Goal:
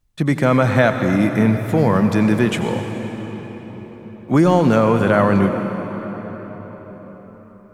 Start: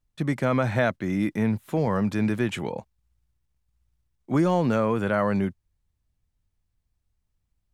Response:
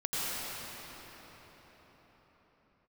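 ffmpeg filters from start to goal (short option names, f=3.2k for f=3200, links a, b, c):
-filter_complex "[0:a]asplit=2[a][b];[1:a]atrim=start_sample=2205,highshelf=f=6k:g=5.5[c];[b][c]afir=irnorm=-1:irlink=0,volume=-13.5dB[d];[a][d]amix=inputs=2:normalize=0,volume=6.5dB"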